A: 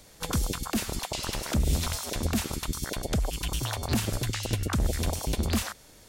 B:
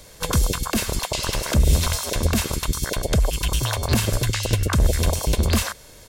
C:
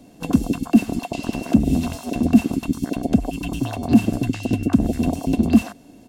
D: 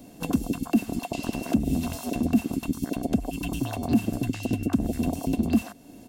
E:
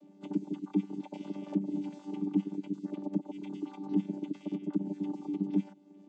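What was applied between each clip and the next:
comb 1.9 ms, depth 33%; gain +7 dB
bell 220 Hz +14.5 dB 2.1 oct; small resonant body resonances 270/710/2700 Hz, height 17 dB, ringing for 40 ms; gain -13.5 dB
high shelf 12000 Hz +11.5 dB; compressor 1.5:1, threshold -32 dBFS, peak gain reduction 9 dB
chord vocoder bare fifth, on G3; gain -7 dB

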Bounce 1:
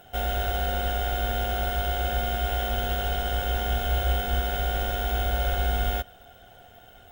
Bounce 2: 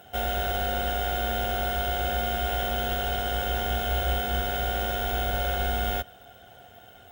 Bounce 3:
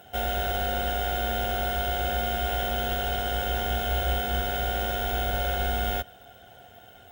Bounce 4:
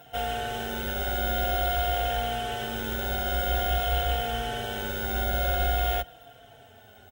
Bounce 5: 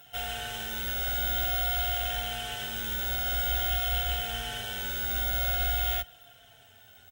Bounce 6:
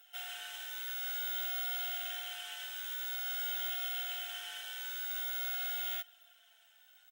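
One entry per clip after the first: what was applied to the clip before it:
HPF 71 Hz; gain +1 dB
notch 1200 Hz, Q 13
endless flanger 3.9 ms -0.49 Hz; gain +2.5 dB
passive tone stack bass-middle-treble 5-5-5; gain +9 dB
HPF 1100 Hz 12 dB/oct; gain -7 dB

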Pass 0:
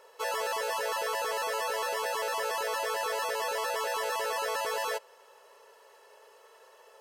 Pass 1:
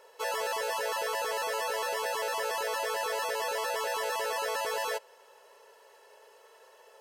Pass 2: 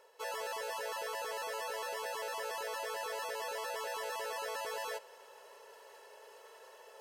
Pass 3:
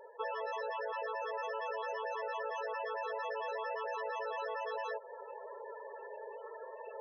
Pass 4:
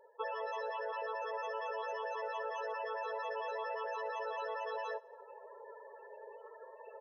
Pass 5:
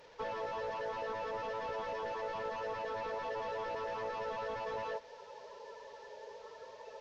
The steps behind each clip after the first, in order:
notch 1200 Hz, Q 7.5
reverse; upward compressor, threshold -38 dBFS; reverse; short-mantissa float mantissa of 8-bit; gain -7.5 dB
compressor 6:1, threshold -46 dBFS, peak gain reduction 9.5 dB; loudest bins only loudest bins 16; gain +11 dB
feedback echo 68 ms, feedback 55%, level -18 dB; upward expander 1.5:1, over -54 dBFS
delta modulation 32 kbps, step -53.5 dBFS; gain +1.5 dB

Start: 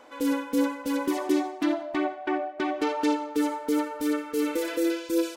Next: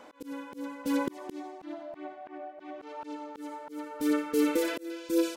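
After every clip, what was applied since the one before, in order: bell 180 Hz +6.5 dB 0.8 oct; auto swell 0.507 s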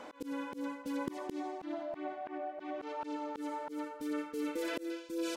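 high shelf 12000 Hz -8 dB; reverse; compressor 6:1, threshold -38 dBFS, peak gain reduction 15.5 dB; reverse; gain +3 dB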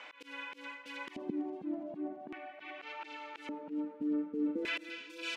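LFO band-pass square 0.43 Hz 210–2500 Hz; warbling echo 0.332 s, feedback 60%, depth 72 cents, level -22.5 dB; gain +10.5 dB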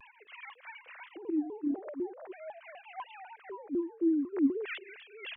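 sine-wave speech; shaped vibrato saw down 4 Hz, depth 250 cents; gain +4 dB

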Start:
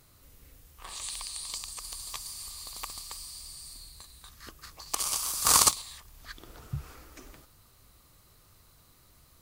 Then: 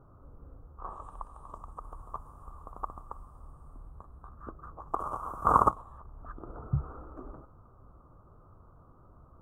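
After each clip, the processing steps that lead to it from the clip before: elliptic low-pass 1300 Hz, stop band 40 dB; gain +7 dB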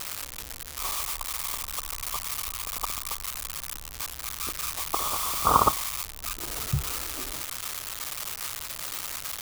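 switching spikes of -19 dBFS; gain +2 dB

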